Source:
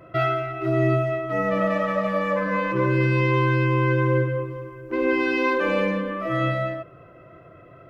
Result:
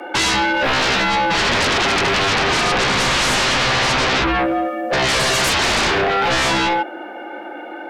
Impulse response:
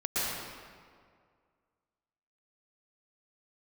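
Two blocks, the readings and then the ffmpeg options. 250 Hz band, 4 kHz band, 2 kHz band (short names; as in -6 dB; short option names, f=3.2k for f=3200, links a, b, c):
+1.5 dB, +23.5 dB, +10.5 dB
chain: -af "afreqshift=200,aeval=exprs='0.355*sin(PI/2*7.08*val(0)/0.355)':c=same,volume=-5dB"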